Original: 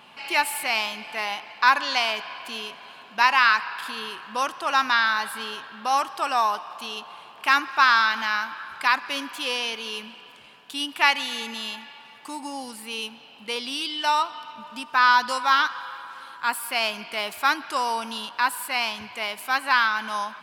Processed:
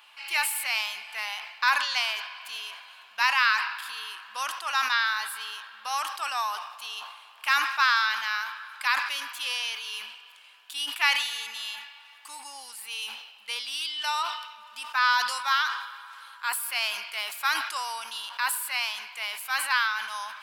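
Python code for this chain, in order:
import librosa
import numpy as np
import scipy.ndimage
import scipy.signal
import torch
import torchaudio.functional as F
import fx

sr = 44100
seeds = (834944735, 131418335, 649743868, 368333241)

y = scipy.signal.sosfilt(scipy.signal.butter(2, 1200.0, 'highpass', fs=sr, output='sos'), x)
y = fx.high_shelf(y, sr, hz=9200.0, db=6.5)
y = fx.sustainer(y, sr, db_per_s=61.0)
y = y * librosa.db_to_amplitude(-3.0)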